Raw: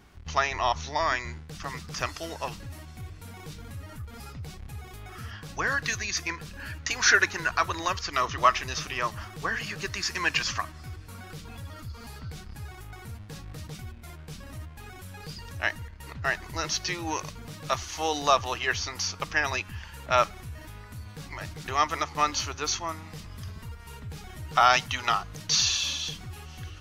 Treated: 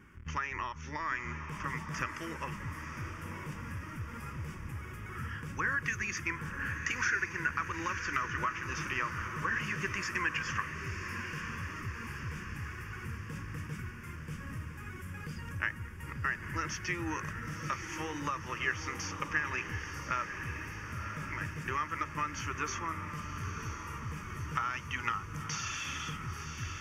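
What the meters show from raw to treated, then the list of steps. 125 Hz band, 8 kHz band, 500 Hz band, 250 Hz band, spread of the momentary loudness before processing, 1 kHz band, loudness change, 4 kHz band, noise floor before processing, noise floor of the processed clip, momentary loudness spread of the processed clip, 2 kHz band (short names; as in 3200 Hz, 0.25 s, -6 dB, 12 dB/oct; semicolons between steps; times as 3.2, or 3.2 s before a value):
-1.5 dB, -11.5 dB, -12.5 dB, -1.5 dB, 19 LU, -9.0 dB, -9.0 dB, -14.5 dB, -45 dBFS, -45 dBFS, 9 LU, -4.5 dB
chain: LPF 3400 Hz 6 dB/oct; low shelf 74 Hz -11.5 dB; notch 430 Hz, Q 12; compressor 12:1, threshold -30 dBFS, peak gain reduction 16 dB; fixed phaser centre 1700 Hz, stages 4; diffused feedback echo 0.992 s, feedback 60%, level -7.5 dB; gain +3 dB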